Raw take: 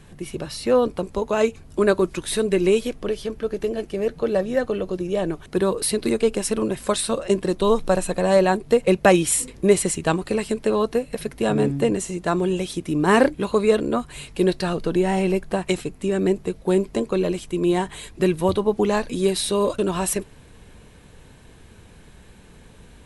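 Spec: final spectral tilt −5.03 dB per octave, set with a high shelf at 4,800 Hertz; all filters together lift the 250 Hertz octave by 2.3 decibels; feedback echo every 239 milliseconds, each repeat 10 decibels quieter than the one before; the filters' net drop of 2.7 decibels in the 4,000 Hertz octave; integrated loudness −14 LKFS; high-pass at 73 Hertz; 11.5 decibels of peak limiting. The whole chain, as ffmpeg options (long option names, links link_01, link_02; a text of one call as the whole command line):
ffmpeg -i in.wav -af "highpass=73,equalizer=frequency=250:width_type=o:gain=3.5,equalizer=frequency=4000:width_type=o:gain=-6.5,highshelf=frequency=4800:gain=6.5,alimiter=limit=-12dB:level=0:latency=1,aecho=1:1:239|478|717|956:0.316|0.101|0.0324|0.0104,volume=9dB" out.wav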